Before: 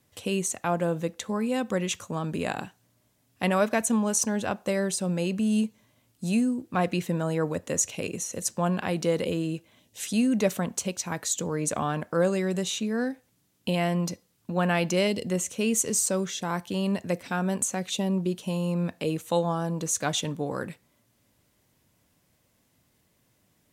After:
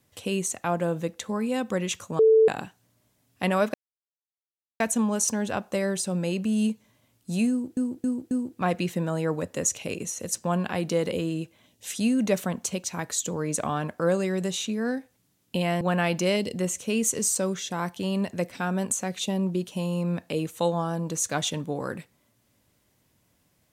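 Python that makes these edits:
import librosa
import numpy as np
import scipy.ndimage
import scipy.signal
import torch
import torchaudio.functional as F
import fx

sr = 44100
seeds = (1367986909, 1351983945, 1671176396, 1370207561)

y = fx.edit(x, sr, fx.bleep(start_s=2.19, length_s=0.29, hz=442.0, db=-13.5),
    fx.insert_silence(at_s=3.74, length_s=1.06),
    fx.repeat(start_s=6.44, length_s=0.27, count=4),
    fx.cut(start_s=13.94, length_s=0.58), tone=tone)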